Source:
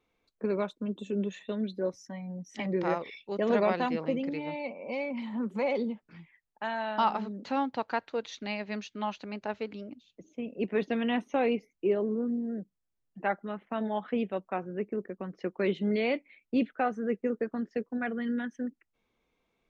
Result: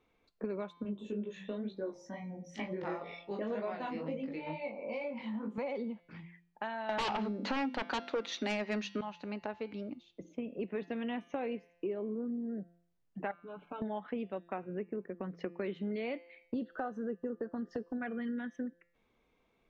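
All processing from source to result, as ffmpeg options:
-filter_complex "[0:a]asettb=1/sr,asplit=3[a][b][c];[a]atrim=end=0.834[d];[b]atrim=start=0.83:end=5.58,asetpts=PTS-STARTPTS,afade=t=in:d=0.004:c=qsin,afade=t=out:st=4.746:d=0.004:c=qsin,asplit=2[e][f];[f]adelay=19,volume=-6dB[g];[e][g]amix=inputs=2:normalize=0,atrim=end_sample=209475,bandreject=f=49.13:t=h:w=4,bandreject=f=98.26:t=h:w=4,bandreject=f=147.39:t=h:w=4,bandreject=f=196.52:t=h:w=4,bandreject=f=245.65:t=h:w=4,bandreject=f=294.78:t=h:w=4,bandreject=f=343.91:t=h:w=4,bandreject=f=393.04:t=h:w=4,bandreject=f=442.17:t=h:w=4,bandreject=f=491.3:t=h:w=4,bandreject=f=540.43:t=h:w=4,bandreject=f=589.56:t=h:w=4,bandreject=f=638.69:t=h:w=4,bandreject=f=687.82:t=h:w=4,bandreject=f=736.95:t=h:w=4,bandreject=f=786.08:t=h:w=4,bandreject=f=835.21:t=h:w=4,bandreject=f=884.34:t=h:w=4,bandreject=f=933.47:t=h:w=4,bandreject=f=982.6:t=h:w=4,flanger=delay=17:depth=5.6:speed=2.1[h];[c]atrim=start=5.576[i];[d][h]acrossfade=d=0.004:c1=hsin:c2=qsin[j];[j][i]acrossfade=d=0.004:c1=qsin:c2=hsin,asettb=1/sr,asplit=3[k][l][m];[k]atrim=end=6.894[n];[l]atrim=start=6.89:end=9.01,asetpts=PTS-STARTPTS,afade=t=in:d=0.004:c=qsin,afade=t=out:st=2.116:d=0.004:c=qsin,highpass=f=190:w=0.5412,highpass=f=190:w=1.3066,bandreject=f=50:t=h:w=6,bandreject=f=100:t=h:w=6,bandreject=f=150:t=h:w=6,bandreject=f=200:t=h:w=6,bandreject=f=250:t=h:w=6,bandreject=f=300:t=h:w=6,bandreject=f=350:t=h:w=6,aeval=exprs='0.2*sin(PI/2*4.47*val(0)/0.2)':c=same[o];[m]atrim=start=9.006[p];[n][o]acrossfade=d=0.004:c1=hsin:c2=qsin[q];[q][p]acrossfade=d=0.004:c1=qsin:c2=hsin,asettb=1/sr,asplit=3[r][s][t];[r]atrim=end=13.314[u];[s]atrim=start=13.31:end=13.82,asetpts=PTS-STARTPTS,afade=t=in:d=0.004:c=qsin,afade=t=out:st=0.506:d=0.004:c=qsin,aecho=1:1:6.8:0.95,atrim=end_sample=22491,acompressor=threshold=-47dB:ratio=2.5:attack=3.2:release=140:knee=1:detection=peak,asuperstop=centerf=1900:order=12:qfactor=3.9[v];[t]atrim=start=13.816[w];[u][v]acrossfade=d=0.004:c1=hsin:c2=qsin[x];[x][w]acrossfade=d=0.004:c1=qsin:c2=hsin,asettb=1/sr,asplit=3[y][z][aa];[y]atrim=end=16.544[ab];[z]atrim=start=16.54:end=17.93,asetpts=PTS-STARTPTS,afade=t=in:d=0.004:c=qsin,afade=t=out:st=1.386:d=0.004:c=qsin,acompressor=mode=upward:threshold=-29dB:ratio=2.5:attack=3.2:release=140:knee=2.83:detection=peak,asuperstop=centerf=2300:order=4:qfactor=1.9[ac];[aa]atrim=start=17.926[ad];[ab][ac]acrossfade=d=0.004:c1=hsin:c2=qsin[ae];[ae][ad]acrossfade=d=0.004:c1=qsin:c2=hsin,highshelf=f=5.8k:g=-11.5,bandreject=f=172.3:t=h:w=4,bandreject=f=344.6:t=h:w=4,bandreject=f=516.9:t=h:w=4,bandreject=f=689.2:t=h:w=4,bandreject=f=861.5:t=h:w=4,bandreject=f=1.0338k:t=h:w=4,bandreject=f=1.2061k:t=h:w=4,bandreject=f=1.3784k:t=h:w=4,bandreject=f=1.5507k:t=h:w=4,bandreject=f=1.723k:t=h:w=4,bandreject=f=1.8953k:t=h:w=4,bandreject=f=2.0676k:t=h:w=4,bandreject=f=2.2399k:t=h:w=4,bandreject=f=2.4122k:t=h:w=4,bandreject=f=2.5845k:t=h:w=4,bandreject=f=2.7568k:t=h:w=4,bandreject=f=2.9291k:t=h:w=4,bandreject=f=3.1014k:t=h:w=4,bandreject=f=3.2737k:t=h:w=4,bandreject=f=3.446k:t=h:w=4,bandreject=f=3.6183k:t=h:w=4,bandreject=f=3.7906k:t=h:w=4,bandreject=f=3.9629k:t=h:w=4,bandreject=f=4.1352k:t=h:w=4,bandreject=f=4.3075k:t=h:w=4,bandreject=f=4.4798k:t=h:w=4,bandreject=f=4.6521k:t=h:w=4,bandreject=f=4.8244k:t=h:w=4,bandreject=f=4.9967k:t=h:w=4,bandreject=f=5.169k:t=h:w=4,bandreject=f=5.3413k:t=h:w=4,bandreject=f=5.5136k:t=h:w=4,bandreject=f=5.6859k:t=h:w=4,bandreject=f=5.8582k:t=h:w=4,bandreject=f=6.0305k:t=h:w=4,acompressor=threshold=-40dB:ratio=4,volume=3.5dB"

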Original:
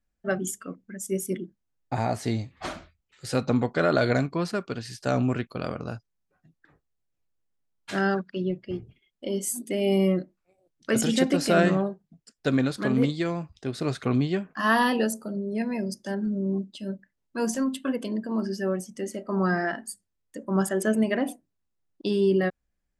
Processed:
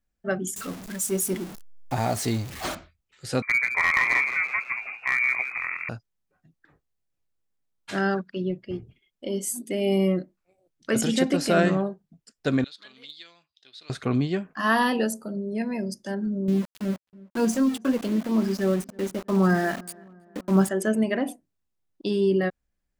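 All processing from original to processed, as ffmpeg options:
-filter_complex "[0:a]asettb=1/sr,asplit=3[a][b][c];[a]atrim=end=0.564[d];[b]atrim=start=0.56:end=2.75,asetpts=PTS-STARTPTS,afade=t=in:d=0.004:c=qsin,afade=t=out:st=2.186:d=0.004:c=qsin,aeval=exprs='val(0)+0.5*0.0178*sgn(val(0))':c=same,highshelf=f=4.5k:g=7[e];[c]atrim=start=2.746[f];[d][e]acrossfade=d=0.004:c1=hsin:c2=qsin[g];[g][f]acrossfade=d=0.004:c1=qsin:c2=hsin,asettb=1/sr,asplit=3[h][i][j];[h]atrim=end=3.424[k];[i]atrim=start=3.42:end=5.89,asetpts=PTS-STARTPTS,afade=t=in:d=0.004:c=qsin,afade=t=out:st=2.466:d=0.004:c=qsin,lowpass=f=2.1k:t=q:w=0.5098,lowpass=f=2.1k:t=q:w=0.6013,lowpass=f=2.1k:t=q:w=0.9,lowpass=f=2.1k:t=q:w=2.563,afreqshift=-2500,aeval=exprs='clip(val(0),-1,0.158)':c=same,asplit=7[l][m][n][o][p][q][r];[m]adelay=166,afreqshift=84,volume=-9dB[s];[n]adelay=332,afreqshift=168,volume=-14.8dB[t];[o]adelay=498,afreqshift=252,volume=-20.7dB[u];[p]adelay=664,afreqshift=336,volume=-26.5dB[v];[q]adelay=830,afreqshift=420,volume=-32.4dB[w];[r]adelay=996,afreqshift=504,volume=-38.2dB[x];[l][s][t][u][v][w][x]amix=inputs=7:normalize=0,atrim=end_sample=108927[y];[j]atrim=start=5.886[z];[k][y]acrossfade=d=0.004:c1=hsin:c2=qsin[aa];[aa][z]acrossfade=d=0.004:c1=qsin:c2=hsin,asettb=1/sr,asplit=3[ab][ac][ad];[ab]atrim=end=12.644[ae];[ac]atrim=start=12.64:end=13.9,asetpts=PTS-STARTPTS,afade=t=in:d=0.004:c=qsin,afade=t=out:st=1.256:d=0.004:c=qsin,bandpass=f=3.7k:t=q:w=3.7,aeval=exprs='clip(val(0),-1,0.0335)':c=same[af];[ad]atrim=start=13.896[ag];[ae][af]acrossfade=d=0.004:c1=hsin:c2=qsin[ah];[ah][ag]acrossfade=d=0.004:c1=qsin:c2=hsin,asettb=1/sr,asplit=3[ai][aj][ak];[ai]atrim=end=16.484[al];[aj]atrim=start=16.48:end=20.69,asetpts=PTS-STARTPTS,afade=t=in:d=0.004:c=qsin,afade=t=out:st=4.206:d=0.004:c=qsin,lowshelf=f=420:g=6.5,aeval=exprs='val(0)*gte(abs(val(0)),0.0211)':c=same,asplit=2[am][an];[an]adelay=324,lowpass=f=1.6k:p=1,volume=-24dB,asplit=2[ao][ap];[ap]adelay=324,lowpass=f=1.6k:p=1,volume=0.52,asplit=2[aq][ar];[ar]adelay=324,lowpass=f=1.6k:p=1,volume=0.52[as];[am][ao][aq][as]amix=inputs=4:normalize=0,atrim=end_sample=185661[at];[ak]atrim=start=20.686[au];[al][at]acrossfade=d=0.004:c1=hsin:c2=qsin[av];[av][au]acrossfade=d=0.004:c1=qsin:c2=hsin"

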